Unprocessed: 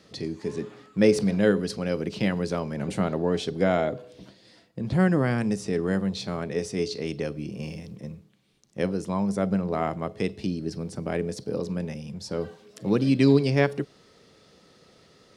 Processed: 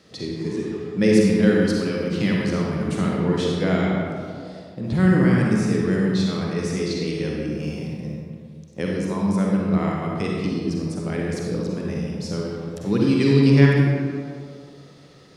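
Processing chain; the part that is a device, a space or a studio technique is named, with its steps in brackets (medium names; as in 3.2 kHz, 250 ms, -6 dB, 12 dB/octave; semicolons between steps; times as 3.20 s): stairwell (reverberation RT60 1.9 s, pre-delay 42 ms, DRR -2.5 dB); dynamic bell 670 Hz, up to -8 dB, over -37 dBFS, Q 1.6; trim +1 dB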